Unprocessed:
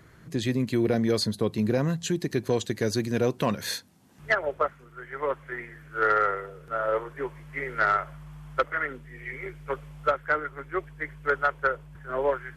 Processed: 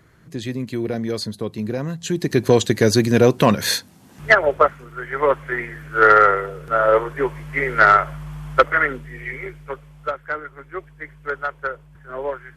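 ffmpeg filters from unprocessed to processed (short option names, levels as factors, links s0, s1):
-af "volume=3.55,afade=t=in:st=1.98:d=0.5:silence=0.266073,afade=t=out:st=8.81:d=0.98:silence=0.251189"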